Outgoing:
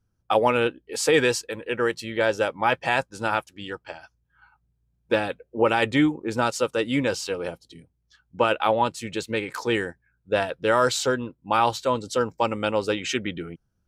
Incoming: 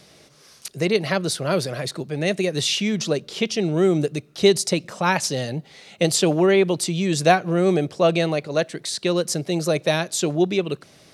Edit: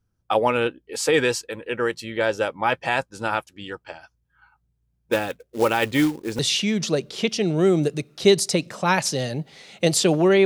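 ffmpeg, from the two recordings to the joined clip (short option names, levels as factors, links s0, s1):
-filter_complex "[0:a]asplit=3[s0][s1][s2];[s0]afade=t=out:st=5.11:d=0.02[s3];[s1]acrusher=bits=4:mode=log:mix=0:aa=0.000001,afade=t=in:st=5.11:d=0.02,afade=t=out:st=6.39:d=0.02[s4];[s2]afade=t=in:st=6.39:d=0.02[s5];[s3][s4][s5]amix=inputs=3:normalize=0,apad=whole_dur=10.45,atrim=end=10.45,atrim=end=6.392[s6];[1:a]atrim=start=2.568:end=6.63[s7];[s6][s7]acrossfade=d=0.004:c1=hsin:c2=hsin"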